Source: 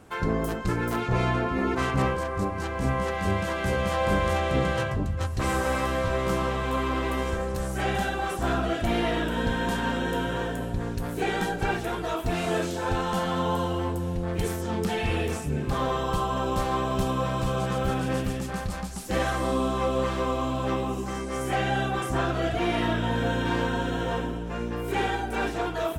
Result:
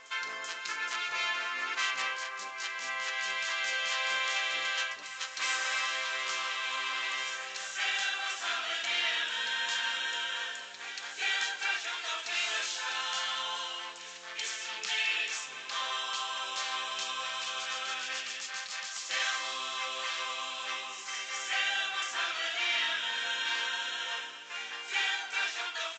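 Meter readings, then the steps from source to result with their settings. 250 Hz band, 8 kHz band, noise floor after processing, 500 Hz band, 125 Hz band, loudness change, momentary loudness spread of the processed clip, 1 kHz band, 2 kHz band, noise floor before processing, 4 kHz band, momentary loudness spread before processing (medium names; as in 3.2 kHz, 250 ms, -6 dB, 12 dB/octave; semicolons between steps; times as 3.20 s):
-32.0 dB, +3.0 dB, -44 dBFS, -20.5 dB, under -40 dB, -4.5 dB, 7 LU, -9.0 dB, +1.0 dB, -33 dBFS, +6.0 dB, 4 LU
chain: Butterworth band-pass 4.8 kHz, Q 0.61; resampled via 16 kHz; reverse echo 383 ms -13 dB; trim +6 dB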